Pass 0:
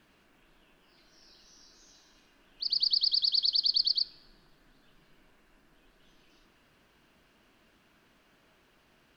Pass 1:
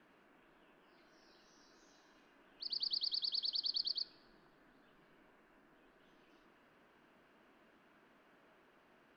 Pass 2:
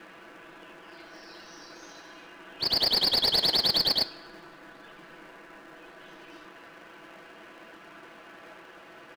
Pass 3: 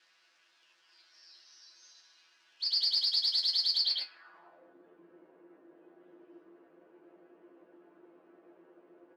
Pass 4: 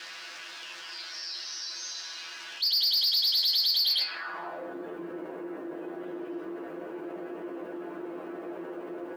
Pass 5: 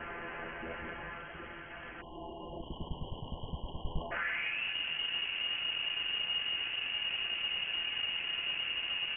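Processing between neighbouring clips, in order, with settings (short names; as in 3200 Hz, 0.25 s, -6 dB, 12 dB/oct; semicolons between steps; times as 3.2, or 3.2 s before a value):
three-band isolator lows -14 dB, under 190 Hz, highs -13 dB, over 2200 Hz
comb 6 ms, depth 95%; in parallel at -5.5 dB: sample-rate reducer 1300 Hz, jitter 20%; on the sum: overdrive pedal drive 16 dB, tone 5300 Hz, clips at -20.5 dBFS; gain +7 dB
resonator 87 Hz, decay 0.15 s, harmonics all, mix 100%; band-pass sweep 5000 Hz -> 370 Hz, 3.79–4.75; gain +3 dB
soft clip -28 dBFS, distortion -12 dB; fast leveller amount 50%; gain +7 dB
companded quantiser 4-bit; spectral delete 2.01–4.11, 380–2100 Hz; inverted band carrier 3200 Hz; gain +2 dB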